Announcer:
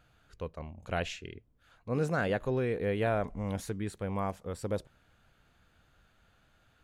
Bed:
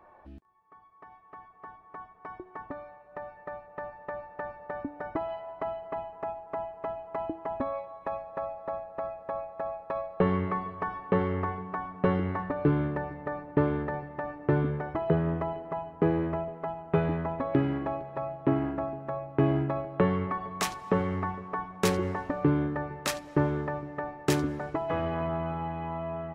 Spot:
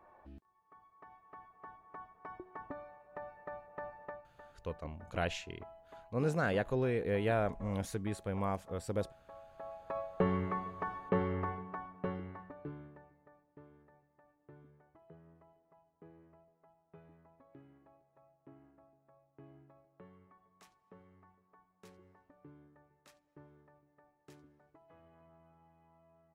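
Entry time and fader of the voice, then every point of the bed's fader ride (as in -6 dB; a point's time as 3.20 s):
4.25 s, -2.0 dB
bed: 4.05 s -5.5 dB
4.30 s -19.5 dB
9.31 s -19.5 dB
9.96 s -6 dB
11.54 s -6 dB
13.58 s -32.5 dB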